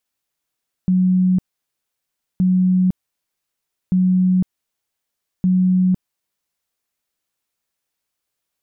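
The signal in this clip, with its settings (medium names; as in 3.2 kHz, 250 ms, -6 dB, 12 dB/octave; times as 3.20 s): tone bursts 184 Hz, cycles 93, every 1.52 s, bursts 4, -12 dBFS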